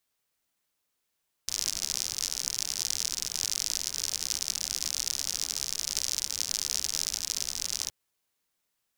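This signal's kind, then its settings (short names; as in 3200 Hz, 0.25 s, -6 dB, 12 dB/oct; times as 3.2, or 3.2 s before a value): rain from filtered ticks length 6.42 s, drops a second 75, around 5600 Hz, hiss -17.5 dB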